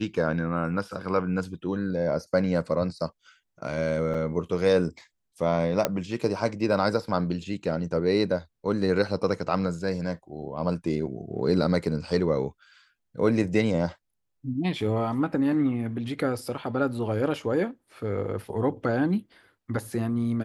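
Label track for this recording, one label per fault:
4.140000	4.140000	gap 4.7 ms
5.850000	5.850000	pop -8 dBFS

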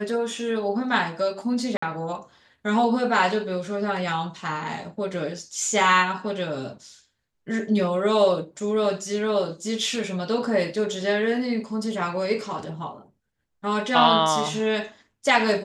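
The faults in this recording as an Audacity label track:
1.770000	1.820000	gap 54 ms

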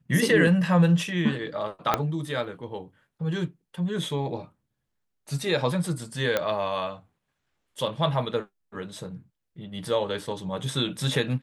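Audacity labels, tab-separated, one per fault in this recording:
1.940000	1.940000	pop -7 dBFS
6.370000	6.370000	pop -10 dBFS

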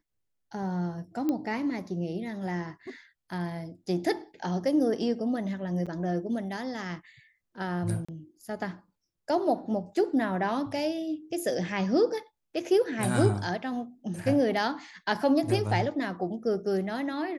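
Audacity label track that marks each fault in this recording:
1.290000	1.290000	pop -17 dBFS
5.860000	5.870000	gap 6.3 ms
8.050000	8.090000	gap 35 ms

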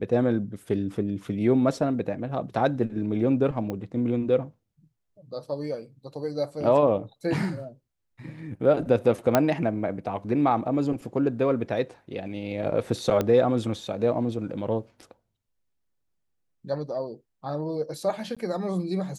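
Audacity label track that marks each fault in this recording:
3.700000	3.700000	pop -19 dBFS
9.350000	9.350000	pop -5 dBFS
13.210000	13.210000	pop -12 dBFS
18.350000	18.370000	gap

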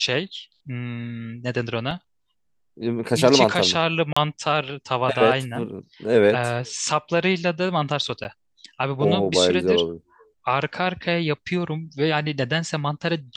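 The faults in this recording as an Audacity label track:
1.910000	1.910000	gap 2.4 ms
4.130000	4.170000	gap 35 ms
8.240000	8.250000	gap 9.7 ms

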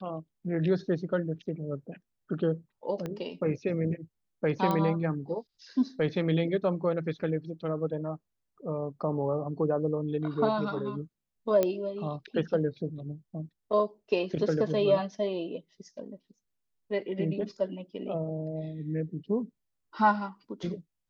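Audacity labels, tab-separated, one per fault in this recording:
3.060000	3.060000	pop -22 dBFS
4.710000	4.710000	pop -16 dBFS
11.630000	11.630000	pop -13 dBFS

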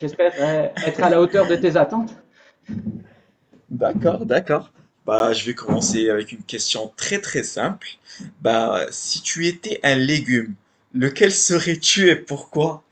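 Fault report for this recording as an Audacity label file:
5.190000	5.200000	gap 11 ms

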